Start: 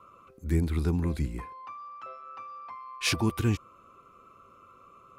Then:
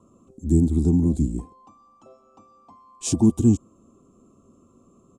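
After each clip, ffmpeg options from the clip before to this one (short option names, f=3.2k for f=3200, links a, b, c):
-af "firequalizer=gain_entry='entry(130,0);entry(240,9);entry(510,-8);entry(740,-3);entry(1400,-27);entry(2100,-30);entry(3100,-14);entry(4700,-13);entry(7400,8);entry(12000,-17)':delay=0.05:min_phase=1,volume=5.5dB"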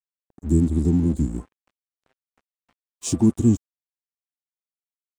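-af "aeval=exprs='sgn(val(0))*max(abs(val(0))-0.00668,0)':c=same"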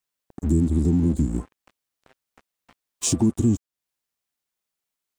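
-filter_complex "[0:a]asplit=2[a][b];[b]alimiter=limit=-15.5dB:level=0:latency=1,volume=0.5dB[c];[a][c]amix=inputs=2:normalize=0,acompressor=threshold=-31dB:ratio=2,volume=5dB"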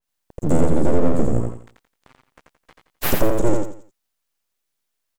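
-filter_complex "[0:a]aeval=exprs='abs(val(0))':c=same,asplit=2[a][b];[b]aecho=0:1:86|172|258|344:0.668|0.201|0.0602|0.018[c];[a][c]amix=inputs=2:normalize=0,adynamicequalizer=threshold=0.00447:dfrequency=2300:dqfactor=0.7:tfrequency=2300:tqfactor=0.7:attack=5:release=100:ratio=0.375:range=3.5:mode=cutabove:tftype=highshelf,volume=4.5dB"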